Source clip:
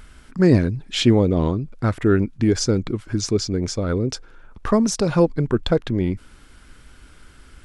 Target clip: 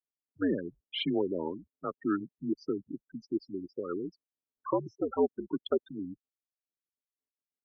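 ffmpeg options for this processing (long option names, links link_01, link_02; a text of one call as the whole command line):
ffmpeg -i in.wav -af "afftfilt=real='re*gte(hypot(re,im),0.126)':imag='im*gte(hypot(re,im),0.126)':win_size=1024:overlap=0.75,highpass=frequency=380:width_type=q:width=0.5412,highpass=frequency=380:width_type=q:width=1.307,lowpass=frequency=3500:width_type=q:width=0.5176,lowpass=frequency=3500:width_type=q:width=0.7071,lowpass=frequency=3500:width_type=q:width=1.932,afreqshift=-83,volume=-7.5dB" out.wav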